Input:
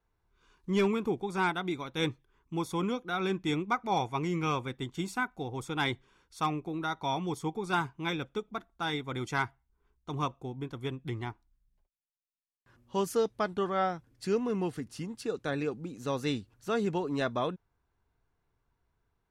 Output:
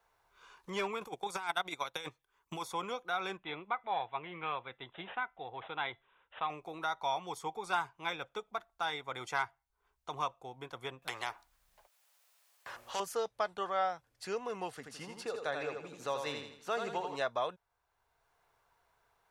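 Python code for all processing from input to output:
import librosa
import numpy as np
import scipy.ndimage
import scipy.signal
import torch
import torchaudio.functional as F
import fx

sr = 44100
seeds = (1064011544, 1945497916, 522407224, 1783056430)

y = fx.chain(x, sr, fx.high_shelf(hz=4100.0, db=11.5),
    fx.transient(attack_db=5, sustain_db=-12),
    fx.over_compress(threshold_db=-31.0, ratio=-0.5), at=(1.01, 2.63))
y = fx.chain(y, sr, fx.comb_fb(f0_hz=680.0, decay_s=0.23, harmonics='all', damping=0.0, mix_pct=40),
    fx.resample_bad(factor=6, down='none', up='filtered'), at=(3.37, 6.5))
y = fx.chain(y, sr, fx.low_shelf(hz=320.0, db=-8.0),
    fx.spectral_comp(ratio=2.0), at=(11.02, 13.0))
y = fx.chain(y, sr, fx.high_shelf(hz=8900.0, db=-6.0),
    fx.echo_feedback(ms=82, feedback_pct=39, wet_db=-5.5), at=(14.75, 17.16))
y = fx.low_shelf_res(y, sr, hz=420.0, db=-13.0, q=1.5)
y = fx.band_squash(y, sr, depth_pct=40)
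y = F.gain(torch.from_numpy(y), -2.5).numpy()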